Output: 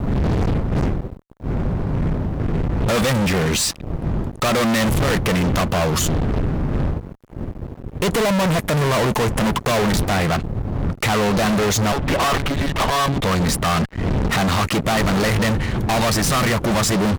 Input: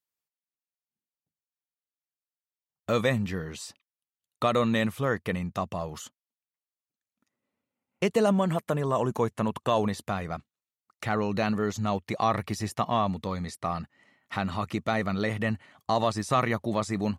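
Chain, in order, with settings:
wind on the microphone 150 Hz −39 dBFS
0:11.92–0:13.24: one-pitch LPC vocoder at 8 kHz 140 Hz
fuzz pedal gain 44 dB, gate −54 dBFS
level −3.5 dB

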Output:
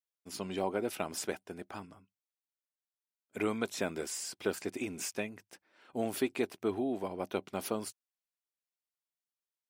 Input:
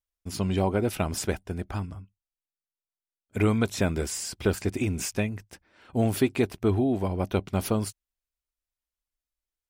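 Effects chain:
high-pass filter 280 Hz 12 dB per octave
level −6 dB

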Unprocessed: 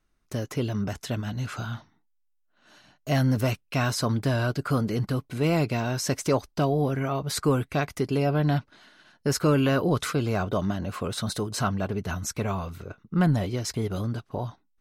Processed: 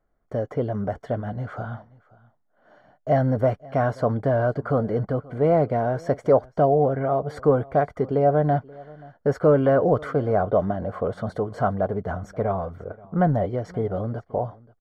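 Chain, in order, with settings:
Savitzky-Golay smoothing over 41 samples
flat-topped bell 590 Hz +9.5 dB 1 octave
on a send: single-tap delay 530 ms −23 dB

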